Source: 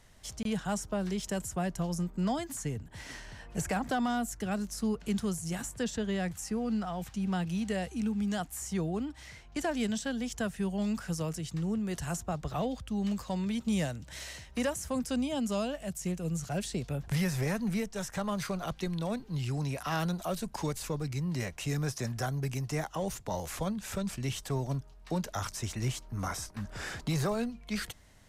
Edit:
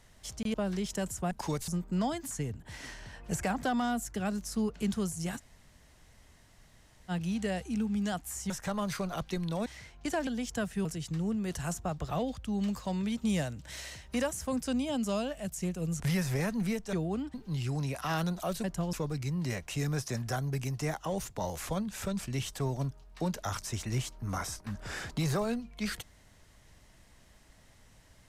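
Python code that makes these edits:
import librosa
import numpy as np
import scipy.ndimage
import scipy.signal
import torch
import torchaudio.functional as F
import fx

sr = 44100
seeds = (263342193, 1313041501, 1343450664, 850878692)

y = fx.edit(x, sr, fx.cut(start_s=0.54, length_s=0.34),
    fx.swap(start_s=1.65, length_s=0.29, other_s=20.46, other_length_s=0.37),
    fx.room_tone_fill(start_s=5.64, length_s=1.72, crossfade_s=0.04),
    fx.swap(start_s=8.76, length_s=0.41, other_s=18.0, other_length_s=1.16),
    fx.cut(start_s=9.78, length_s=0.32),
    fx.cut(start_s=10.68, length_s=0.6),
    fx.cut(start_s=16.43, length_s=0.64), tone=tone)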